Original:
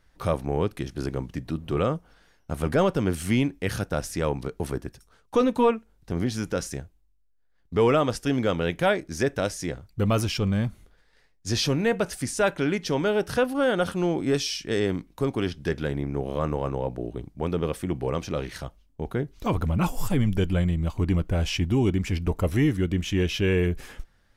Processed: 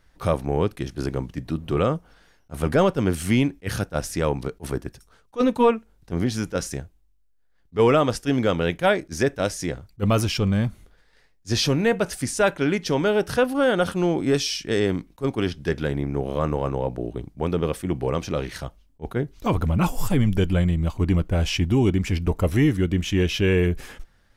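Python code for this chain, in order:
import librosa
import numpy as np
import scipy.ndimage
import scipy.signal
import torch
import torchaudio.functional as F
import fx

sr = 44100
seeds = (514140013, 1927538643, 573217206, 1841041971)

y = fx.attack_slew(x, sr, db_per_s=470.0)
y = y * 10.0 ** (3.0 / 20.0)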